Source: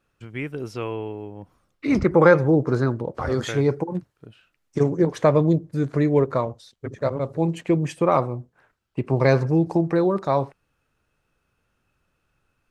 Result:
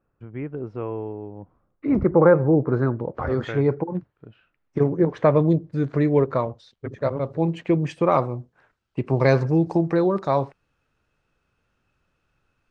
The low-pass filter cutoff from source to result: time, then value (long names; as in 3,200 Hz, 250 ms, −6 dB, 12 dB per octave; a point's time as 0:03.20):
0:02.35 1,100 Hz
0:03.03 2,200 Hz
0:05.09 2,200 Hz
0:05.55 4,000 Hz
0:07.69 4,000 Hz
0:08.33 6,700 Hz